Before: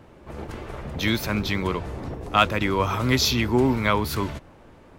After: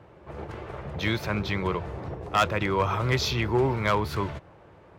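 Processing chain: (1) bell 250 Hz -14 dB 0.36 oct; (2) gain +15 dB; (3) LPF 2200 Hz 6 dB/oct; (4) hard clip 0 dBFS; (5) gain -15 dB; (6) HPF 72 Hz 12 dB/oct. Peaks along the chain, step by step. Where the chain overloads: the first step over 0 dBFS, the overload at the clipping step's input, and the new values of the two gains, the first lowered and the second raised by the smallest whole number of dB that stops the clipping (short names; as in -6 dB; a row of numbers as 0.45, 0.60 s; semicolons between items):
-6.0, +9.0, +7.5, 0.0, -15.0, -12.0 dBFS; step 2, 7.5 dB; step 2 +7 dB, step 5 -7 dB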